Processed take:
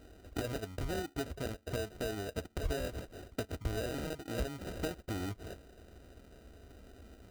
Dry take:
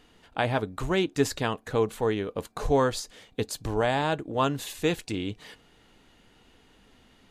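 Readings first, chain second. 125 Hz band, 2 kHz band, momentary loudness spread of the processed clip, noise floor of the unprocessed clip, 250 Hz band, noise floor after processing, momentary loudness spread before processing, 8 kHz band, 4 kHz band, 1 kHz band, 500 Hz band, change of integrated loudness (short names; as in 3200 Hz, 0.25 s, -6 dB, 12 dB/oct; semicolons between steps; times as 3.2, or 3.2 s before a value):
-7.5 dB, -11.5 dB, 19 LU, -60 dBFS, -10.5 dB, -62 dBFS, 10 LU, -9.5 dB, -10.5 dB, -16.5 dB, -12.0 dB, -11.5 dB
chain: sample-rate reducer 1100 Hz, jitter 0%; compressor 12:1, threshold -36 dBFS, peak gain reduction 18.5 dB; resonant low shelf 100 Hz +10 dB, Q 1.5; notch comb 870 Hz; gain +3 dB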